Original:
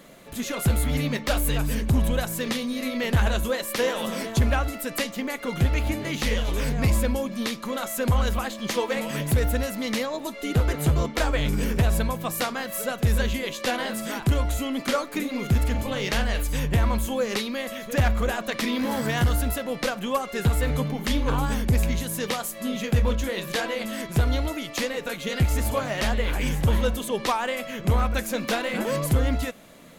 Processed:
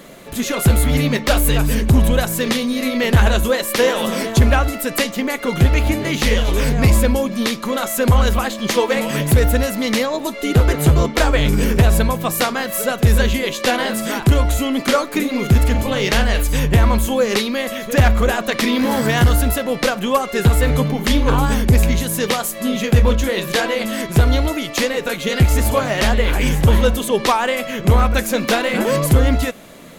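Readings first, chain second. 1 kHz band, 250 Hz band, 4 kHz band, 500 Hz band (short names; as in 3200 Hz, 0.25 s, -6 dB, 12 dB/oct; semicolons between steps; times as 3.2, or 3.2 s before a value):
+8.5 dB, +8.5 dB, +8.5 dB, +9.0 dB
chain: bell 390 Hz +3 dB 0.34 oct; gain +8.5 dB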